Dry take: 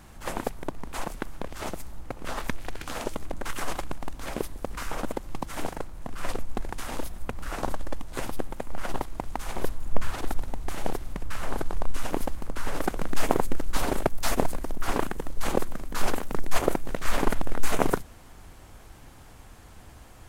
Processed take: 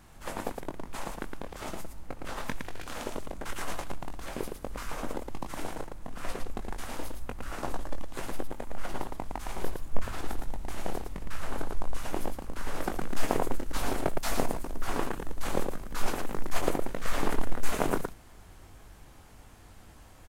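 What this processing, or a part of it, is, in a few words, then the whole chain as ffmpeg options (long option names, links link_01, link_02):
slapback doubling: -filter_complex "[0:a]asplit=3[link_01][link_02][link_03];[link_02]adelay=21,volume=-7dB[link_04];[link_03]adelay=112,volume=-4.5dB[link_05];[link_01][link_04][link_05]amix=inputs=3:normalize=0,volume=-5.5dB"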